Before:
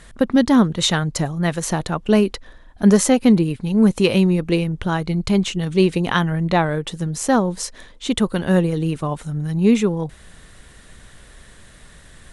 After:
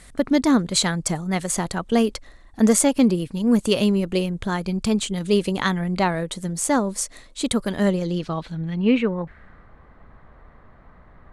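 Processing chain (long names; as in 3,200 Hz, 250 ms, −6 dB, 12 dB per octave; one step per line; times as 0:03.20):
low-pass filter sweep 8,200 Hz → 1,000 Hz, 0:08.40–0:10.56
wrong playback speed 44.1 kHz file played as 48 kHz
level −3.5 dB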